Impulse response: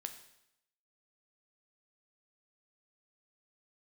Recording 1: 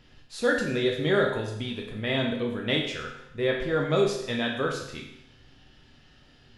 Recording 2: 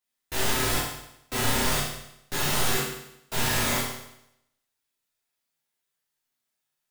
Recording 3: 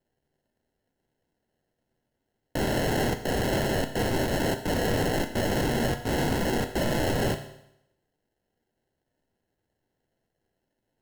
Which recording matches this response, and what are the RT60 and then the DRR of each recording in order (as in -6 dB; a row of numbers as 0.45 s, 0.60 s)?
3; 0.80 s, 0.80 s, 0.80 s; -1.0 dB, -8.5 dB, 6.5 dB